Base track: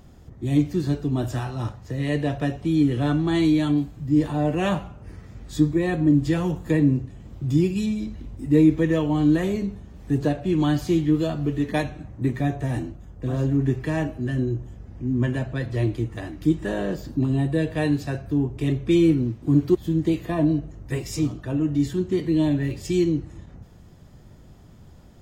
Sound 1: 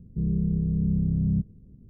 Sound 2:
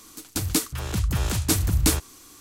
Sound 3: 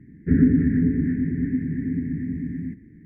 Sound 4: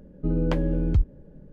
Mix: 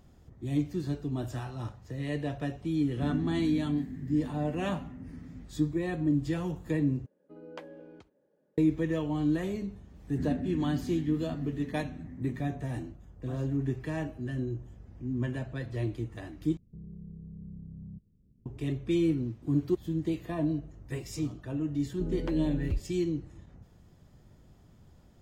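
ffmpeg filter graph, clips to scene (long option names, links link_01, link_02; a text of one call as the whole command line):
ffmpeg -i bed.wav -i cue0.wav -i cue1.wav -i cue2.wav -i cue3.wav -filter_complex "[3:a]asplit=2[link_01][link_02];[4:a]asplit=2[link_03][link_04];[0:a]volume=-9dB[link_05];[link_03]highpass=510[link_06];[1:a]acompressor=threshold=-29dB:ratio=2.5:attack=1.1:release=364:knee=6:detection=rms[link_07];[link_05]asplit=3[link_08][link_09][link_10];[link_08]atrim=end=7.064[link_11];[link_06]atrim=end=1.52,asetpts=PTS-STARTPTS,volume=-12dB[link_12];[link_09]atrim=start=8.576:end=16.574[link_13];[link_07]atrim=end=1.89,asetpts=PTS-STARTPTS,volume=-13.5dB[link_14];[link_10]atrim=start=18.456[link_15];[link_01]atrim=end=3.05,asetpts=PTS-STARTPTS,volume=-17dB,afade=type=in:duration=0.004:curve=hsin,afade=type=out:start_time=3.046:duration=0.004:curve=hsin,adelay=2710[link_16];[link_02]atrim=end=3.05,asetpts=PTS-STARTPTS,volume=-17dB,afade=type=in:duration=0.004:curve=hsin,afade=type=out:start_time=3.046:duration=0.004:curve=hsin,adelay=9890[link_17];[link_04]atrim=end=1.52,asetpts=PTS-STARTPTS,volume=-10.5dB,afade=type=in:duration=0.004:curve=hsin,afade=type=out:start_time=1.516:duration=0.004:curve=hsin,adelay=21760[link_18];[link_11][link_12]acrossfade=duration=0.004:curve1=hsin:curve2=hsin[link_19];[link_19][link_13]acrossfade=duration=0.004:curve1=hsin:curve2=hsin[link_20];[link_20][link_14]acrossfade=duration=0.004:curve1=hsin:curve2=hsin[link_21];[link_21][link_15]acrossfade=duration=0.004:curve1=hsin:curve2=hsin[link_22];[link_22][link_16][link_17][link_18]amix=inputs=4:normalize=0" out.wav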